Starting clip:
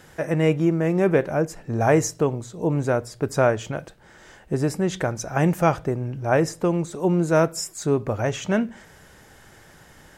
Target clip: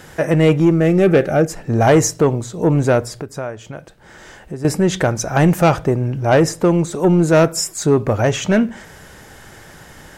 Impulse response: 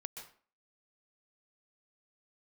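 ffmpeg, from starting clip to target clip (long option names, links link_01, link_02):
-filter_complex "[0:a]asettb=1/sr,asplit=3[link_01][link_02][link_03];[link_01]atrim=end=3.214[link_04];[link_02]atrim=start=3.21:end=4.65,asetpts=PTS-STARTPTS,afade=type=in:duration=0.004:curve=qsin,afade=type=out:start_time=1.436:duration=0.004:curve=qsin,acompressor=threshold=-46dB:ratio=2[link_05];[link_03]atrim=start=4.646[link_06];[link_04][link_05]acrossfade=duration=0.004:curve1=hsin:curve2=qsin[link_07];[link_07][link_06]acrossfade=duration=0.004:curve1=qsin:curve2=hsin,asoftclip=type=tanh:threshold=-14dB,asettb=1/sr,asplit=3[link_08][link_09][link_10];[link_08]atrim=end=0.804[link_11];[link_09]atrim=start=0.8:end=1.49,asetpts=PTS-STARTPTS,afade=type=in:duration=0.004:curve=qsin,afade=type=out:start_time=0.686:duration=0.004:curve=qsin,asuperstop=centerf=990:order=4:qfactor=3.8[link_12];[link_10]atrim=start=1.486[link_13];[link_11][link_12]acrossfade=duration=0.004:curve1=hsin:curve2=qsin[link_14];[link_14][link_13]acrossfade=duration=0.004:curve1=qsin:curve2=hsin,volume=9dB"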